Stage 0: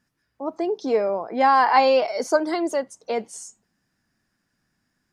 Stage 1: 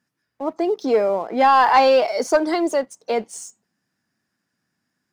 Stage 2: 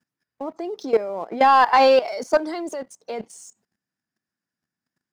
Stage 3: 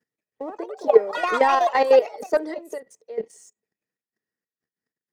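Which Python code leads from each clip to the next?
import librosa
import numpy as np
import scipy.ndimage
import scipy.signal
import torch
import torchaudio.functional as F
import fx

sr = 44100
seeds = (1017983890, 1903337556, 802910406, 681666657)

y1 = scipy.signal.sosfilt(scipy.signal.butter(2, 120.0, 'highpass', fs=sr, output='sos'), x)
y1 = fx.leveller(y1, sr, passes=1)
y2 = fx.level_steps(y1, sr, step_db=15)
y2 = F.gain(torch.from_numpy(y2), 1.5).numpy()
y3 = fx.step_gate(y2, sr, bpm=189, pattern='xx..xxxx..x.', floor_db=-12.0, edge_ms=4.5)
y3 = fx.small_body(y3, sr, hz=(450.0, 1900.0), ring_ms=35, db=16)
y3 = fx.echo_pitch(y3, sr, ms=179, semitones=5, count=3, db_per_echo=-6.0)
y3 = F.gain(torch.from_numpy(y3), -6.5).numpy()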